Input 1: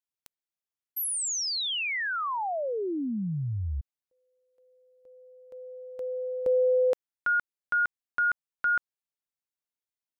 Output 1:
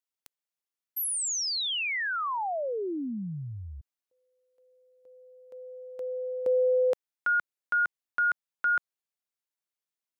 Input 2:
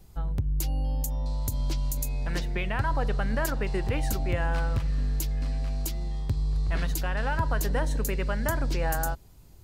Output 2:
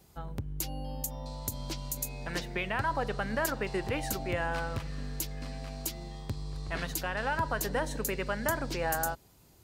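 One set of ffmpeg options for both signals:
ffmpeg -i in.wav -af "highpass=frequency=230:poles=1" out.wav

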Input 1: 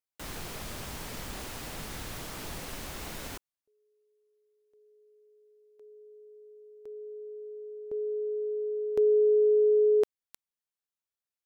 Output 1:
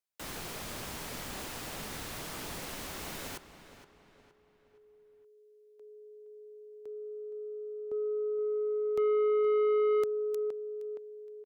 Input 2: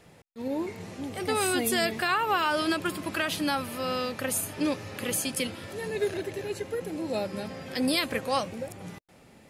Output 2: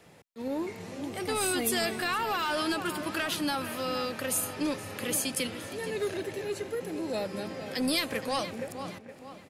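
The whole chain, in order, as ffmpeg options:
ffmpeg -i in.wav -filter_complex "[0:a]lowshelf=frequency=100:gain=-8.5,asplit=2[link_01][link_02];[link_02]adelay=468,lowpass=frequency=4000:poles=1,volume=-12.5dB,asplit=2[link_03][link_04];[link_04]adelay=468,lowpass=frequency=4000:poles=1,volume=0.44,asplit=2[link_05][link_06];[link_06]adelay=468,lowpass=frequency=4000:poles=1,volume=0.44,asplit=2[link_07][link_08];[link_08]adelay=468,lowpass=frequency=4000:poles=1,volume=0.44[link_09];[link_01][link_03][link_05][link_07][link_09]amix=inputs=5:normalize=0,acrossover=split=200|3200[link_10][link_11][link_12];[link_11]asoftclip=type=tanh:threshold=-25.5dB[link_13];[link_10][link_13][link_12]amix=inputs=3:normalize=0" out.wav

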